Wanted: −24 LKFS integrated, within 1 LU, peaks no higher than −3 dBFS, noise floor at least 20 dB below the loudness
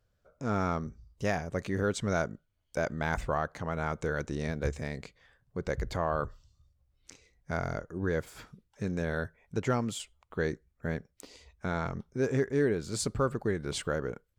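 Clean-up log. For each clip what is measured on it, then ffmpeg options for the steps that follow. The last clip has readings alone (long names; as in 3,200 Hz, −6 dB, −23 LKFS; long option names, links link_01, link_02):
integrated loudness −33.5 LKFS; sample peak −16.5 dBFS; target loudness −24.0 LKFS
→ -af "volume=9.5dB"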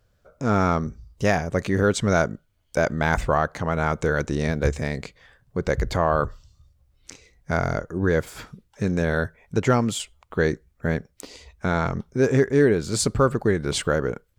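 integrated loudness −24.0 LKFS; sample peak −7.0 dBFS; background noise floor −66 dBFS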